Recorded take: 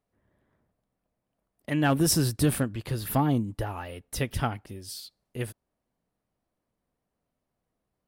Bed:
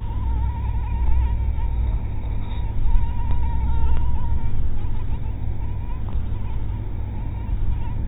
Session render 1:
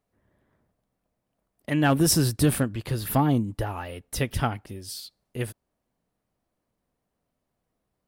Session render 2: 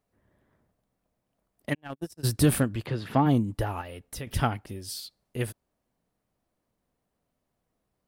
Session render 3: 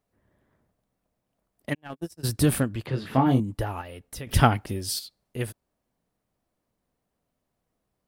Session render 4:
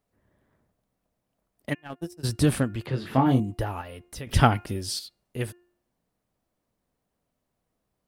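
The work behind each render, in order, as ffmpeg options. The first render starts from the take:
ffmpeg -i in.wav -af "volume=2.5dB" out.wav
ffmpeg -i in.wav -filter_complex "[0:a]asplit=3[link_01][link_02][link_03];[link_01]afade=type=out:start_time=1.73:duration=0.02[link_04];[link_02]agate=range=-59dB:threshold=-17dB:ratio=16:release=100:detection=peak,afade=type=in:start_time=1.73:duration=0.02,afade=type=out:start_time=2.23:duration=0.02[link_05];[link_03]afade=type=in:start_time=2.23:duration=0.02[link_06];[link_04][link_05][link_06]amix=inputs=3:normalize=0,asplit=3[link_07][link_08][link_09];[link_07]afade=type=out:start_time=2.85:duration=0.02[link_10];[link_08]highpass=130,lowpass=3400,afade=type=in:start_time=2.85:duration=0.02,afade=type=out:start_time=3.25:duration=0.02[link_11];[link_09]afade=type=in:start_time=3.25:duration=0.02[link_12];[link_10][link_11][link_12]amix=inputs=3:normalize=0,asettb=1/sr,asplit=3[link_13][link_14][link_15];[link_13]atrim=end=3.814[link_16];[link_14]atrim=start=3.81:end=4.27,asetpts=PTS-STARTPTS,afade=type=in:duration=0.004:curve=qsin,afade=type=out:start_time=0.456:duration=0.004:curve=qsin,acompressor=threshold=-38dB:ratio=2.5:attack=3.2:release=140:knee=1:detection=peak[link_17];[link_15]atrim=start=4.266[link_18];[link_16][link_17]acrossfade=duration=0.004:curve1=hsin:curve2=qsin[link_19];[link_19][link_18]acrossfade=duration=0.004:curve1=qsin:curve2=hsin" out.wav
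ffmpeg -i in.wav -filter_complex "[0:a]asettb=1/sr,asplit=3[link_01][link_02][link_03];[link_01]atrim=end=1.814[link_04];[link_02]atrim=start=1.81:end=2.29,asetpts=PTS-STARTPTS,afade=type=in:duration=0.004:curve=qsin,afade=type=out:start_time=0.476:duration=0.004:curve=qsin,asplit=2[link_05][link_06];[link_06]adelay=12,volume=-11dB[link_07];[link_05][link_07]amix=inputs=2:normalize=0,atrim=end_sample=21168[link_08];[link_03]atrim=start=2.286[link_09];[link_04][link_08]acrossfade=duration=0.004:curve1=hsin:curve2=qsin[link_10];[link_10][link_09]acrossfade=duration=0.004:curve1=qsin:curve2=hsin,asettb=1/sr,asplit=3[link_11][link_12][link_13];[link_11]atrim=end=2.914[link_14];[link_12]atrim=start=2.91:end=3.4,asetpts=PTS-STARTPTS,afade=type=in:duration=0.004:curve=qsin,afade=type=out:start_time=0.486:duration=0.004:curve=qsin,asplit=2[link_15][link_16];[link_16]adelay=23,volume=-4.5dB[link_17];[link_15][link_17]amix=inputs=2:normalize=0,atrim=end_sample=21609[link_18];[link_13]atrim=start=3.396[link_19];[link_14][link_18]acrossfade=duration=0.004:curve1=hsin:curve2=qsin[link_20];[link_20][link_19]acrossfade=duration=0.004:curve1=qsin:curve2=hsin,asplit=3[link_21][link_22][link_23];[link_21]atrim=end=4.292[link_24];[link_22]atrim=start=4.288:end=4.992,asetpts=PTS-STARTPTS,volume=7.5dB[link_25];[link_23]atrim=start=4.988[link_26];[link_24][link_25]acrossfade=duration=0.004:curve1=hsin:curve2=hsin[link_27];[link_27][link_26]acrossfade=duration=0.004:curve1=hsin:curve2=hsin" out.wav
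ffmpeg -i in.wav -filter_complex "[0:a]acrossover=split=9600[link_01][link_02];[link_02]acompressor=threshold=-49dB:ratio=4:attack=1:release=60[link_03];[link_01][link_03]amix=inputs=2:normalize=0,bandreject=frequency=352.8:width_type=h:width=4,bandreject=frequency=705.6:width_type=h:width=4,bandreject=frequency=1058.4:width_type=h:width=4,bandreject=frequency=1411.2:width_type=h:width=4,bandreject=frequency=1764:width_type=h:width=4,bandreject=frequency=2116.8:width_type=h:width=4,bandreject=frequency=2469.6:width_type=h:width=4,bandreject=frequency=2822.4:width_type=h:width=4" out.wav

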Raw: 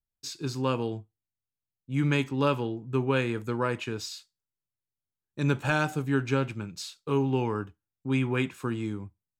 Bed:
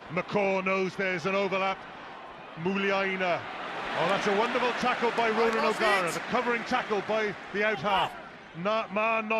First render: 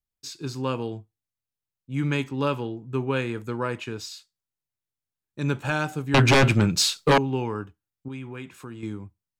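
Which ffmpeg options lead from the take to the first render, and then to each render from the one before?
ffmpeg -i in.wav -filter_complex "[0:a]asettb=1/sr,asplit=3[link_01][link_02][link_03];[link_01]atrim=end=6.144[link_04];[link_02]atrim=start=6.14:end=7.18,asetpts=PTS-STARTPTS,afade=type=in:duration=0.004:curve=qsin,afade=type=out:start_time=1.036:duration=0.004:curve=qsin,aeval=exprs='0.237*sin(PI/2*5.01*val(0)/0.237)':channel_layout=same[link_05];[link_03]atrim=start=7.176[link_06];[link_04][link_05]acrossfade=duration=0.004:curve1=hsin:curve2=qsin[link_07];[link_07][link_06]acrossfade=duration=0.004:curve1=qsin:curve2=hsin,asettb=1/sr,asplit=3[link_08][link_09][link_10];[link_08]atrim=end=8.084[link_11];[link_09]atrim=start=8.08:end=8.83,asetpts=PTS-STARTPTS,afade=type=in:duration=0.004:curve=qsin,afade=type=out:start_time=0.746:duration=0.004:curve=qsin,acompressor=threshold=-41dB:ratio=2:attack=3.2:release=140:knee=1:detection=peak[link_12];[link_10]atrim=start=8.826[link_13];[link_11][link_12]acrossfade=duration=0.004:curve1=hsin:curve2=qsin[link_14];[link_14][link_13]acrossfade=duration=0.004:curve1=qsin:curve2=hsin" out.wav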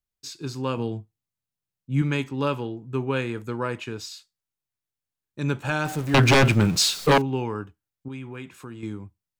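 ffmpeg -i in.wav -filter_complex "[0:a]asettb=1/sr,asplit=3[link_01][link_02][link_03];[link_01]atrim=end=0.774[link_04];[link_02]atrim=start=0.77:end=2.02,asetpts=PTS-STARTPTS,afade=type=in:duration=0.004:curve=qsin,afade=type=out:start_time=1.246:duration=0.004:curve=qsin,equalizer=frequency=160:width_type=o:width=1.4:gain=7[link_05];[link_03]atrim=start=2.016[link_06];[link_04][link_05]acrossfade=duration=0.004:curve1=hsin:curve2=qsin[link_07];[link_07][link_06]acrossfade=duration=0.004:curve1=qsin:curve2=hsin,asettb=1/sr,asplit=3[link_08][link_09][link_10];[link_08]atrim=end=5.854[link_11];[link_09]atrim=start=5.85:end=7.22,asetpts=PTS-STARTPTS,afade=type=in:duration=0.004:curve=qsin,afade=type=out:start_time=1.366:duration=0.004:curve=qsin,aeval=exprs='val(0)+0.5*0.0266*sgn(val(0))':channel_layout=same[link_12];[link_10]atrim=start=7.216[link_13];[link_11][link_12]acrossfade=duration=0.004:curve1=hsin:curve2=qsin[link_14];[link_14][link_13]acrossfade=duration=0.004:curve1=qsin:curve2=hsin" out.wav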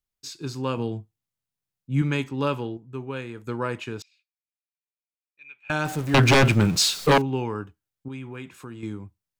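ffmpeg -i in.wav -filter_complex "[0:a]asettb=1/sr,asplit=3[link_01][link_02][link_03];[link_01]atrim=end=4.024[link_04];[link_02]atrim=start=4.02:end=5.7,asetpts=PTS-STARTPTS,afade=type=in:duration=0.004:curve=qsin,afade=type=out:start_time=1.676:duration=0.004:curve=qsin,bandpass=frequency=2400:width_type=q:width=17[link_05];[link_03]atrim=start=5.696[link_06];[link_04][link_05]acrossfade=duration=0.004:curve1=hsin:curve2=qsin[link_07];[link_07][link_06]acrossfade=duration=0.004:curve1=qsin:curve2=hsin,asplit=3[link_08][link_09][link_10];[link_08]atrim=end=2.772[link_11];[link_09]atrim=start=2.768:end=3.472,asetpts=PTS-STARTPTS,volume=-7dB[link_12];[link_10]atrim=start=3.468[link_13];[link_11][link_12]acrossfade=duration=0.004:curve1=hsin:curve2=hsin[link_14];[link_14][link_13]acrossfade=duration=0.004:curve1=hsin:curve2=hsin" out.wav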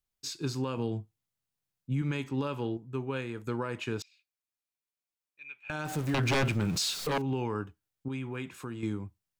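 ffmpeg -i in.wav -af "acompressor=threshold=-22dB:ratio=6,alimiter=limit=-22.5dB:level=0:latency=1:release=228" out.wav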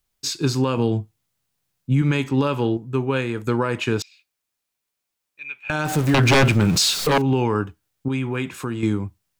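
ffmpeg -i in.wav -af "volume=12dB" out.wav

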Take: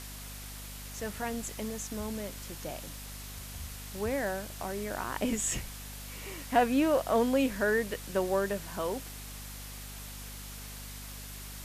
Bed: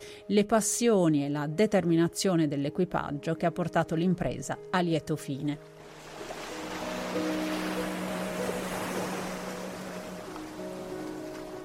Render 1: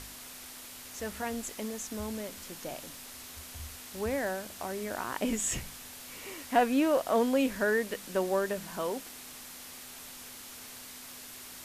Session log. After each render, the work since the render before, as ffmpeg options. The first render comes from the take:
ffmpeg -i in.wav -af "bandreject=frequency=50:width_type=h:width=4,bandreject=frequency=100:width_type=h:width=4,bandreject=frequency=150:width_type=h:width=4,bandreject=frequency=200:width_type=h:width=4" out.wav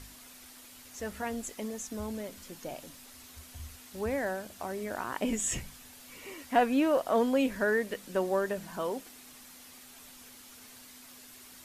ffmpeg -i in.wav -af "afftdn=noise_reduction=7:noise_floor=-47" out.wav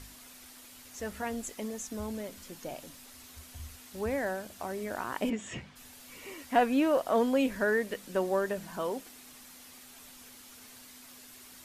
ffmpeg -i in.wav -filter_complex "[0:a]asplit=3[link_01][link_02][link_03];[link_01]afade=type=out:start_time=5.29:duration=0.02[link_04];[link_02]highpass=110,lowpass=3200,afade=type=in:start_time=5.29:duration=0.02,afade=type=out:start_time=5.75:duration=0.02[link_05];[link_03]afade=type=in:start_time=5.75:duration=0.02[link_06];[link_04][link_05][link_06]amix=inputs=3:normalize=0" out.wav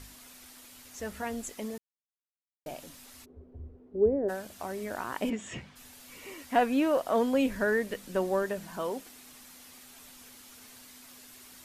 ffmpeg -i in.wav -filter_complex "[0:a]asplit=3[link_01][link_02][link_03];[link_01]afade=type=out:start_time=3.24:duration=0.02[link_04];[link_02]lowpass=frequency=410:width_type=q:width=4.6,afade=type=in:start_time=3.24:duration=0.02,afade=type=out:start_time=4.28:duration=0.02[link_05];[link_03]afade=type=in:start_time=4.28:duration=0.02[link_06];[link_04][link_05][link_06]amix=inputs=3:normalize=0,asettb=1/sr,asplit=3[link_07][link_08][link_09];[link_07]atrim=end=7.344[link_10];[link_08]atrim=start=7.34:end=8.43,asetpts=PTS-STARTPTS,afade=type=in:duration=0.004:curve=qsin,afade=type=out:start_time=1.086:duration=0.004:curve=qsin,lowshelf=frequency=120:gain=7.5[link_11];[link_09]atrim=start=8.426[link_12];[link_10][link_11]acrossfade=duration=0.004:curve1=hsin:curve2=qsin[link_13];[link_13][link_12]acrossfade=duration=0.004:curve1=qsin:curve2=hsin,asplit=3[link_14][link_15][link_16];[link_14]atrim=end=1.78,asetpts=PTS-STARTPTS,afade=type=out:start_time=1.776:duration=0.004:curve=hsin[link_17];[link_15]atrim=start=1.78:end=2.66,asetpts=PTS-STARTPTS,volume=0[link_18];[link_16]atrim=start=2.66,asetpts=PTS-STARTPTS,afade=type=in:duration=0.004:curve=hsin[link_19];[link_17][link_18][link_19]concat=n=3:v=0:a=1" out.wav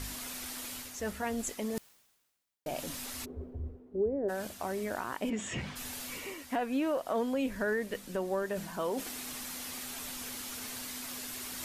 ffmpeg -i in.wav -af "areverse,acompressor=mode=upward:threshold=-30dB:ratio=2.5,areverse,alimiter=limit=-22.5dB:level=0:latency=1:release=333" out.wav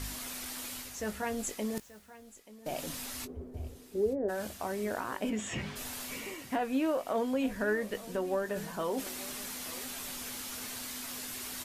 ffmpeg -i in.wav -filter_complex "[0:a]asplit=2[link_01][link_02];[link_02]adelay=19,volume=-11dB[link_03];[link_01][link_03]amix=inputs=2:normalize=0,aecho=1:1:882|1764:0.126|0.0302" out.wav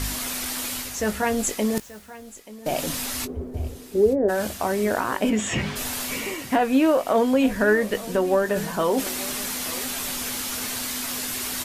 ffmpeg -i in.wav -af "volume=11.5dB" out.wav

